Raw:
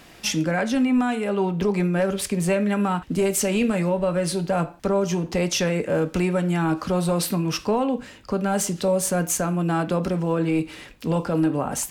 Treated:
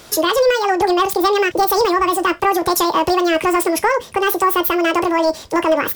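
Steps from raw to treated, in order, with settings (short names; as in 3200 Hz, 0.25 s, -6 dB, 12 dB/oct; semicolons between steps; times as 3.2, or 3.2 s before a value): speed mistake 7.5 ips tape played at 15 ips; gain +6.5 dB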